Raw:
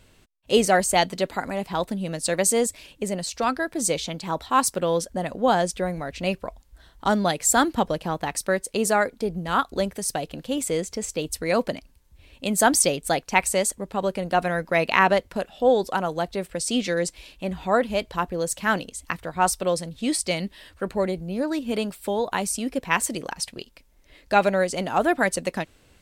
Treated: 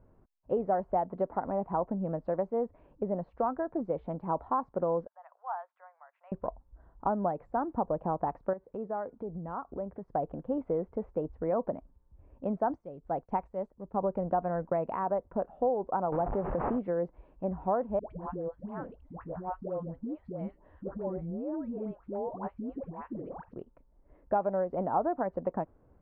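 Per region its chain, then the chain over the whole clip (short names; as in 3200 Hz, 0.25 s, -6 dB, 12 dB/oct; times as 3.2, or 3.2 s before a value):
5.07–6.32 Bessel high-pass 1500 Hz, order 8 + tape spacing loss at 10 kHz 25 dB
8.53–10.08 HPF 43 Hz + compressor 3:1, threshold -33 dBFS
12.7–15.04 tone controls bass +3 dB, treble +15 dB + expander -38 dBFS
16.12–16.79 delta modulation 16 kbps, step -28.5 dBFS + backwards sustainer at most 36 dB/s
17.99–23.53 dynamic EQ 1000 Hz, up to -5 dB, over -36 dBFS, Q 0.94 + compressor 10:1, threshold -28 dBFS + dispersion highs, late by 0.121 s, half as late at 670 Hz
whole clip: compressor 6:1, threshold -24 dBFS; LPF 1100 Hz 24 dB/oct; dynamic EQ 800 Hz, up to +5 dB, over -39 dBFS, Q 0.96; gain -4 dB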